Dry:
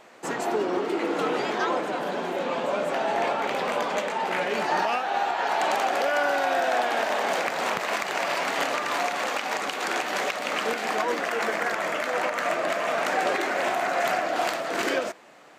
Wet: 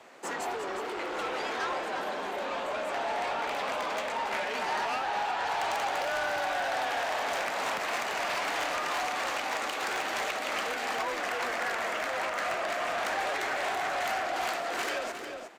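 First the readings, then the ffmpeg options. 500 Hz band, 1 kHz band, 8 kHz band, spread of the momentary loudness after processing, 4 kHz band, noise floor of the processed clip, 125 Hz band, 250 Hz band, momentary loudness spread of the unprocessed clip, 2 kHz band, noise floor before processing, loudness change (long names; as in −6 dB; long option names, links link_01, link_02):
−7.5 dB, −5.0 dB, −3.5 dB, 4 LU, −3.0 dB, −36 dBFS, −9.0 dB, −10.5 dB, 4 LU, −4.0 dB, −33 dBFS, −5.0 dB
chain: -filter_complex "[0:a]aeval=exprs='0.188*(cos(1*acos(clip(val(0)/0.188,-1,1)))-cos(1*PI/2))+0.0335*(cos(5*acos(clip(val(0)/0.188,-1,1)))-cos(5*PI/2))':channel_layout=same,afreqshift=24,aecho=1:1:359:0.355,acrossover=split=630[link_01][link_02];[link_01]alimiter=level_in=4.5dB:limit=-24dB:level=0:latency=1,volume=-4.5dB[link_03];[link_03][link_02]amix=inputs=2:normalize=0,volume=-7.5dB"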